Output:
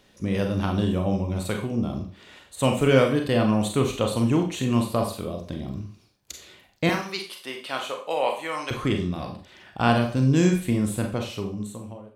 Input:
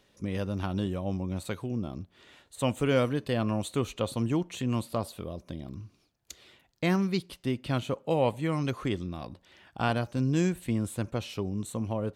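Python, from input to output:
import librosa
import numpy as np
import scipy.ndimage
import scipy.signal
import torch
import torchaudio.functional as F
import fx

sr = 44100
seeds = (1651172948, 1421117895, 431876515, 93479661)

y = fx.fade_out_tail(x, sr, length_s=1.27)
y = fx.highpass(y, sr, hz=700.0, slope=12, at=(6.89, 8.71))
y = fx.rev_schroeder(y, sr, rt60_s=0.39, comb_ms=30, drr_db=3.0)
y = y * librosa.db_to_amplitude(5.5)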